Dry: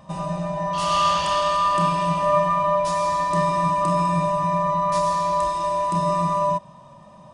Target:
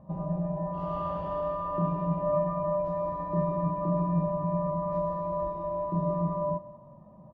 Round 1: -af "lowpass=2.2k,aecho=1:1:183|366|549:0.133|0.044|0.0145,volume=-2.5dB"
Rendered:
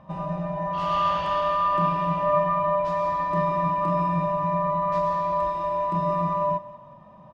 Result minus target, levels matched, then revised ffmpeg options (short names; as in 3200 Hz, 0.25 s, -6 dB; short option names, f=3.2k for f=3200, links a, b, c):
2000 Hz band +13.0 dB
-af "lowpass=570,aecho=1:1:183|366|549:0.133|0.044|0.0145,volume=-2.5dB"